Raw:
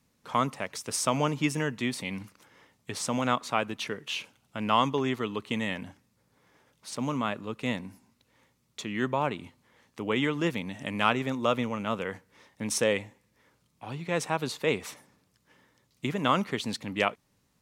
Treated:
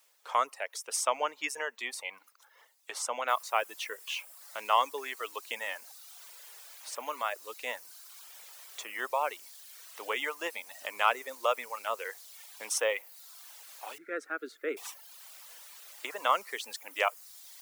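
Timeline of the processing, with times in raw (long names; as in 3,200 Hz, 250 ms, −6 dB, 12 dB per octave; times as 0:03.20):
0:03.28: noise floor change −67 dB −48 dB
0:13.98–0:14.77: drawn EQ curve 170 Hz 0 dB, 300 Hz +14 dB, 980 Hz −25 dB, 1,400 Hz +5 dB, 2,900 Hz −17 dB
whole clip: high-pass filter 530 Hz 24 dB per octave; dynamic equaliser 4,000 Hz, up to −6 dB, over −49 dBFS, Q 2.1; reverb reduction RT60 0.98 s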